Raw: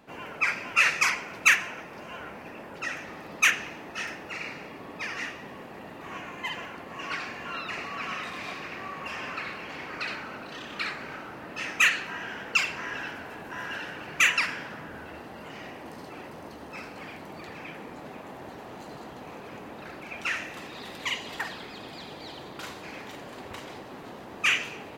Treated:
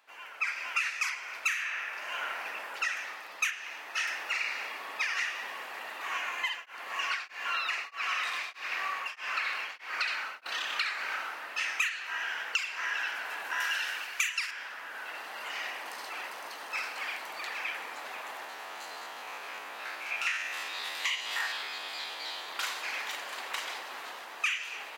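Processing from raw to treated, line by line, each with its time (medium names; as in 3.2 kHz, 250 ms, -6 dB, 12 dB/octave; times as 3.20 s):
1.19–2.38 s: reverb throw, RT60 1.2 s, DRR 3 dB
6.35–10.46 s: tremolo of two beating tones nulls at 1.6 Hz
13.60–14.51 s: treble shelf 3.2 kHz +10.5 dB
18.44–22.49 s: spectrogram pixelated in time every 50 ms
whole clip: level rider gain up to 12 dB; high-pass 1.2 kHz 12 dB/octave; compression 8:1, threshold -25 dBFS; trim -3 dB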